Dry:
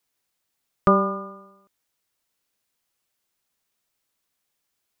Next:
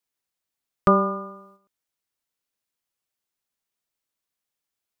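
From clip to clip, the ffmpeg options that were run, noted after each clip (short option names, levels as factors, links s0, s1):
-af "agate=range=0.398:threshold=0.00224:ratio=16:detection=peak"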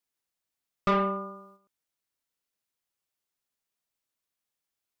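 -af "asoftclip=type=tanh:threshold=0.133,volume=0.794"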